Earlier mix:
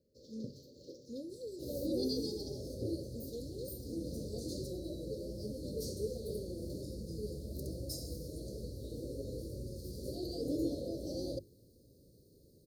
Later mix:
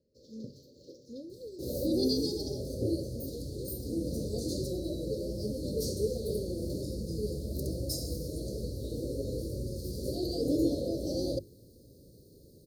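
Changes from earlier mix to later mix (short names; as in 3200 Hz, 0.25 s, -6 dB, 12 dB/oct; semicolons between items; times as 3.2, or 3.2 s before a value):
speech: add high shelf 5800 Hz -11.5 dB; second sound +7.0 dB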